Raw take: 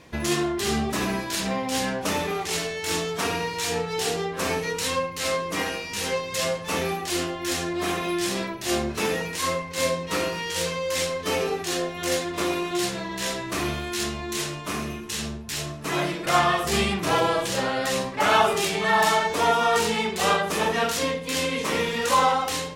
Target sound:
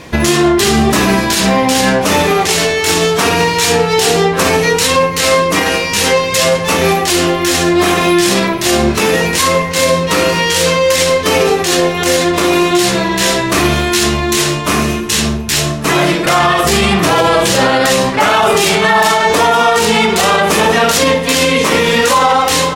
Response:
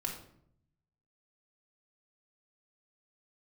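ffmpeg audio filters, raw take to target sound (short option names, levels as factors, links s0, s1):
-filter_complex "[0:a]asplit=2[s0][s1];[s1]aecho=0:1:495:0.141[s2];[s0][s2]amix=inputs=2:normalize=0,alimiter=level_in=7.94:limit=0.891:release=50:level=0:latency=1,volume=0.891"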